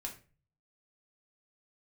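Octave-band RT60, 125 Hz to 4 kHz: 0.80 s, 0.45 s, 0.40 s, 0.30 s, 0.35 s, 0.30 s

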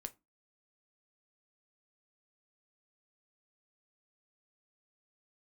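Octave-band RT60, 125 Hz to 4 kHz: 0.25 s, 0.35 s, 0.20 s, 0.25 s, 0.20 s, 0.15 s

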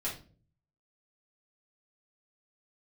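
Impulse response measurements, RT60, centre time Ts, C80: no single decay rate, 25 ms, 14.0 dB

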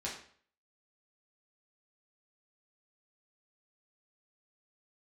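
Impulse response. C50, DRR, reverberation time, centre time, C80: 5.5 dB, -5.5 dB, 0.50 s, 33 ms, 9.5 dB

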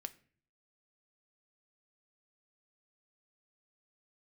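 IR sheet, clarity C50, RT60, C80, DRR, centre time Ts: 18.5 dB, 0.45 s, 23.0 dB, 9.5 dB, 4 ms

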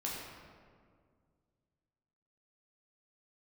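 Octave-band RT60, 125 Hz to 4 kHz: 2.9 s, 2.5 s, 2.2 s, 1.8 s, 1.5 s, 1.1 s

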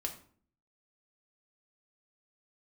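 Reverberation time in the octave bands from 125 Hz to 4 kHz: 0.70 s, 0.70 s, 0.50 s, 0.50 s, 0.40 s, 0.35 s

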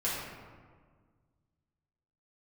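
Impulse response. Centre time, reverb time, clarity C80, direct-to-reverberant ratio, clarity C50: 92 ms, 1.7 s, 1.5 dB, -9.0 dB, -0.5 dB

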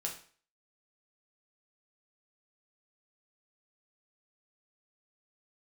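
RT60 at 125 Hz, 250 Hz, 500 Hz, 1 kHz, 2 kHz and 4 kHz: 0.40 s, 0.40 s, 0.45 s, 0.45 s, 0.45 s, 0.45 s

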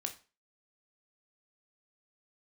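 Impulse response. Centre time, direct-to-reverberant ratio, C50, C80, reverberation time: 9 ms, 4.5 dB, 12.5 dB, 19.0 dB, 0.35 s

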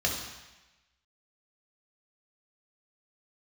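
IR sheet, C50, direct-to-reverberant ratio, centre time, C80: 4.0 dB, -1.5 dB, 44 ms, 6.5 dB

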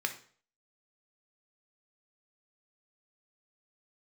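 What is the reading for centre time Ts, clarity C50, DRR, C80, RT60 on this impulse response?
9 ms, 11.5 dB, 5.0 dB, 16.5 dB, 0.45 s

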